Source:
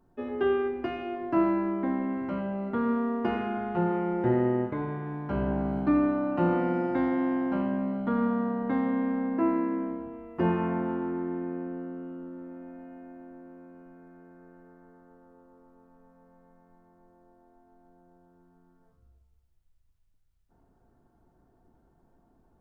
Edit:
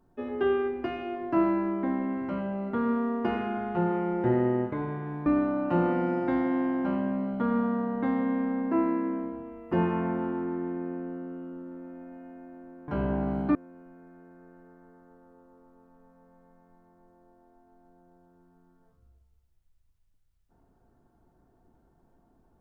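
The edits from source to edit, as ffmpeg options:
-filter_complex "[0:a]asplit=4[s0][s1][s2][s3];[s0]atrim=end=5.262[s4];[s1]atrim=start=5.928:end=13.552[s5];[s2]atrim=start=5.258:end=5.932[s6];[s3]atrim=start=13.548[s7];[s4][s5]acrossfade=d=0.004:c1=hsin:c2=hsin[s8];[s8][s6]acrossfade=d=0.004:c1=hsin:c2=hsin[s9];[s9][s7]acrossfade=d=0.004:c1=hsin:c2=hsin"

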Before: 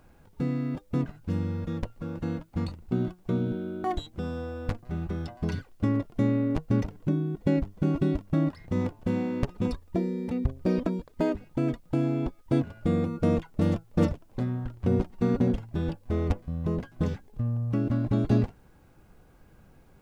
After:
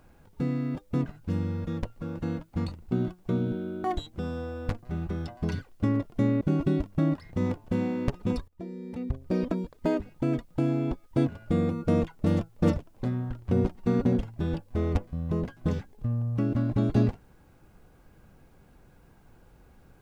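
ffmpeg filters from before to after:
-filter_complex "[0:a]asplit=3[s0][s1][s2];[s0]atrim=end=6.412[s3];[s1]atrim=start=7.758:end=9.83,asetpts=PTS-STARTPTS,afade=t=out:st=2.068:d=0.004:c=hsin:silence=0.112202[s4];[s2]atrim=start=9.83,asetpts=PTS-STARTPTS,afade=t=in:d=1.52:c=qsin:silence=0.112202[s5];[s4][s5]concat=n=2:v=0:a=1[s6];[s3][s6]acrossfade=d=0.004:c1=hsin:c2=hsin"

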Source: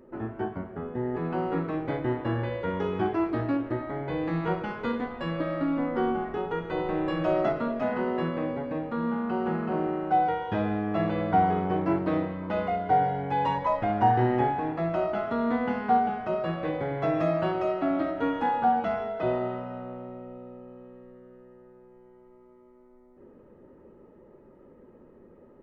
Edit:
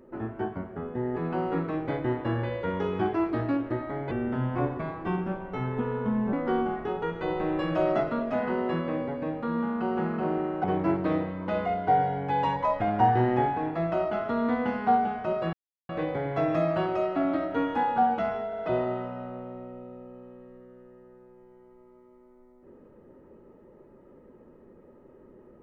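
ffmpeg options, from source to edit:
-filter_complex "[0:a]asplit=7[s0][s1][s2][s3][s4][s5][s6];[s0]atrim=end=4.114[s7];[s1]atrim=start=4.11:end=5.82,asetpts=PTS-STARTPTS,asetrate=33957,aresample=44100,atrim=end_sample=97936,asetpts=PTS-STARTPTS[s8];[s2]atrim=start=5.816:end=10.132[s9];[s3]atrim=start=11.658:end=16.55,asetpts=PTS-STARTPTS,afade=t=out:st=4.888:d=0.004:c=hsin,apad=pad_dur=0.36[s10];[s4]atrim=start=16.55:end=19.192,asetpts=PTS-STARTPTS,afade=t=in:d=0.004:c=hsin[s11];[s5]atrim=start=19.128:end=19.192[s12];[s6]atrim=start=19.128[s13];[s7][s8]acrossfade=d=0.004:c1=hsin:c2=hsin[s14];[s14][s9]acrossfade=d=0.004:c1=hsin:c2=hsin[s15];[s10][s11]concat=n=2:v=0:a=1[s16];[s15][s16]acrossfade=d=0.004:c1=hsin:c2=hsin[s17];[s17][s12]acrossfade=d=0.004:c1=hsin:c2=hsin[s18];[s18][s13]acrossfade=d=0.004:c1=hsin:c2=hsin"

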